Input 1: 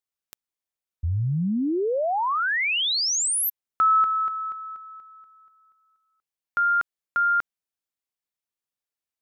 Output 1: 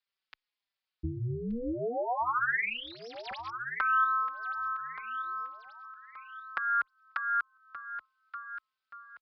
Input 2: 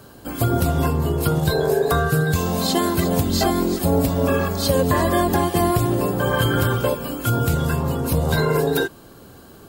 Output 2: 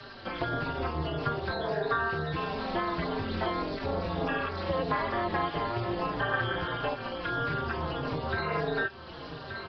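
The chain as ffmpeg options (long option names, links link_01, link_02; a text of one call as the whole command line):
ffmpeg -i in.wav -filter_complex "[0:a]acrossover=split=430|2100[link_01][link_02][link_03];[link_03]aeval=exprs='0.0335*(abs(mod(val(0)/0.0335+3,4)-2)-1)':channel_layout=same[link_04];[link_01][link_02][link_04]amix=inputs=3:normalize=0,aresample=11025,aresample=44100,tremolo=f=240:d=0.857,tiltshelf=frequency=970:gain=-9,aecho=1:1:1176|2352|3528:0.126|0.0403|0.0129,acompressor=threshold=-42dB:ratio=2:attack=77:release=255:knee=1:detection=rms,highshelf=frequency=4300:gain=-6.5,acrossover=split=2700[link_05][link_06];[link_06]acompressor=threshold=-53dB:ratio=4:attack=1:release=60[link_07];[link_05][link_07]amix=inputs=2:normalize=0,asplit=2[link_08][link_09];[link_09]adelay=4.5,afreqshift=-1.6[link_10];[link_08][link_10]amix=inputs=2:normalize=1,volume=9dB" out.wav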